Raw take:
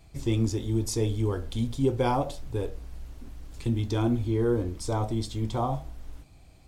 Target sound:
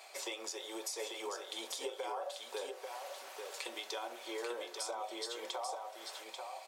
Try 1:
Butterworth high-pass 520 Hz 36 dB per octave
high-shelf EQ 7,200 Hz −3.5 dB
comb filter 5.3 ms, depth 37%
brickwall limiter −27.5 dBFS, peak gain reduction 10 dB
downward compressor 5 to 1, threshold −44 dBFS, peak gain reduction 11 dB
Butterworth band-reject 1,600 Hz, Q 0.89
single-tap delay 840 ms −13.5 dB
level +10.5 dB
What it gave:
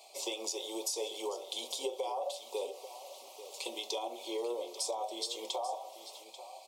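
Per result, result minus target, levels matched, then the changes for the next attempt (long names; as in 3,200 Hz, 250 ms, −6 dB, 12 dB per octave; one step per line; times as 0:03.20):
2,000 Hz band −8.5 dB; downward compressor: peak gain reduction −5.5 dB; echo-to-direct −8 dB
remove: Butterworth band-reject 1,600 Hz, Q 0.89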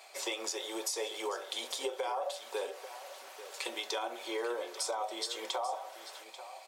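downward compressor: peak gain reduction −5.5 dB; echo-to-direct −8 dB
change: downward compressor 5 to 1, threshold −51 dBFS, peak gain reduction 16.5 dB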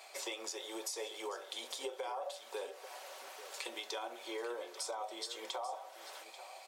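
echo-to-direct −8 dB
change: single-tap delay 840 ms −5.5 dB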